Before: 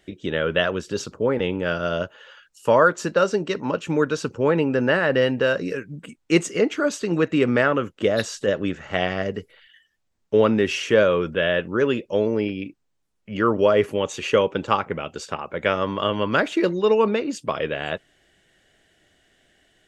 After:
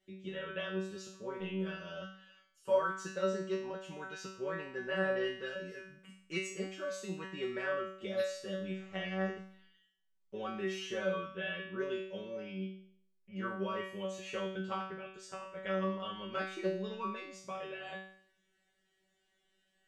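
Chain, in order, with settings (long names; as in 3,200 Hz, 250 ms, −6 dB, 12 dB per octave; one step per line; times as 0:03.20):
tuned comb filter 190 Hz, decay 0.59 s, harmonics all, mix 100%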